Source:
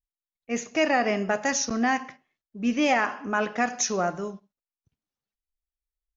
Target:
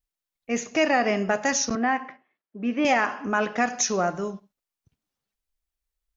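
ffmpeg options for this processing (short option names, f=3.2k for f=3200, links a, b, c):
-filter_complex "[0:a]asplit=2[a][b];[b]acompressor=threshold=-36dB:ratio=6,volume=-0.5dB[c];[a][c]amix=inputs=2:normalize=0,asettb=1/sr,asplit=3[d][e][f];[d]atrim=end=1.754[g];[e]atrim=start=1.75:end=2.85,asetpts=PTS-STARTPTS,afade=t=in:d=0.004:c=qsin,afade=t=out:st=1.096:d=0.004:c=qsin,highpass=250,lowpass=2.2k[h];[f]atrim=start=2.846[i];[g][h]acrossfade=d=0.004:c1=hsin:c2=qsin[j];[j][i]acrossfade=d=0.004:c1=qsin:c2=hsin"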